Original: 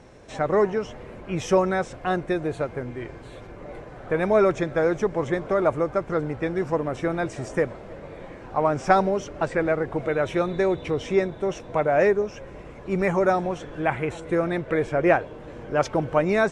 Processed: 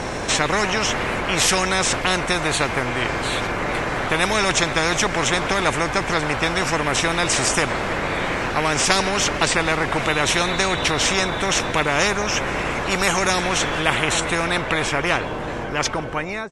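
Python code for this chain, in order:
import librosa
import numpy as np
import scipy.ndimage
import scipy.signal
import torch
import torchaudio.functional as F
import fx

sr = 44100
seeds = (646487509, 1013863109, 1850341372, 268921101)

y = fx.fade_out_tail(x, sr, length_s=2.79)
y = fx.spectral_comp(y, sr, ratio=4.0)
y = y * librosa.db_to_amplitude(3.0)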